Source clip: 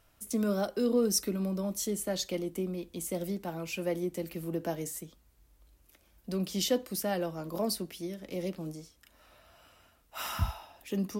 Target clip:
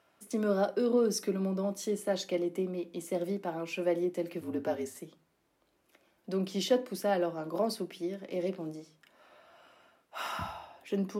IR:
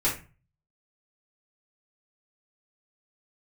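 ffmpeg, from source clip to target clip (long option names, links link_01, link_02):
-filter_complex "[0:a]aemphasis=mode=reproduction:type=75kf,asplit=3[link_01][link_02][link_03];[link_01]afade=type=out:start_time=4.4:duration=0.02[link_04];[link_02]afreqshift=-58,afade=type=in:start_time=4.4:duration=0.02,afade=type=out:start_time=4.93:duration=0.02[link_05];[link_03]afade=type=in:start_time=4.93:duration=0.02[link_06];[link_04][link_05][link_06]amix=inputs=3:normalize=0,highpass=250,asplit=2[link_07][link_08];[link_08]equalizer=frequency=11000:width=2.3:gain=13.5[link_09];[1:a]atrim=start_sample=2205[link_10];[link_09][link_10]afir=irnorm=-1:irlink=0,volume=-22dB[link_11];[link_07][link_11]amix=inputs=2:normalize=0,volume=2.5dB"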